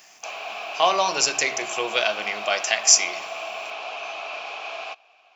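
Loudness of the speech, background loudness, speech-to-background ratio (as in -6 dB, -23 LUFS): -21.0 LUFS, -32.0 LUFS, 11.0 dB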